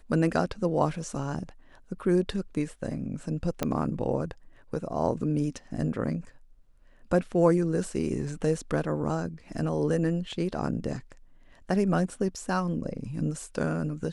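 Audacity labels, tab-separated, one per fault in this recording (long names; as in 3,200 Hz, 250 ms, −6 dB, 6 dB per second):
3.630000	3.630000	click −12 dBFS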